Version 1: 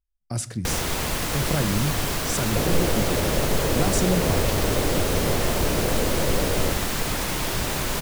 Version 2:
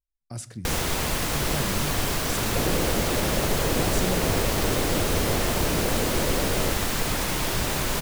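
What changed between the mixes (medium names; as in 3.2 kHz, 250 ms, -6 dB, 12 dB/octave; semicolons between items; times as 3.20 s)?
speech -7.5 dB; second sound: send off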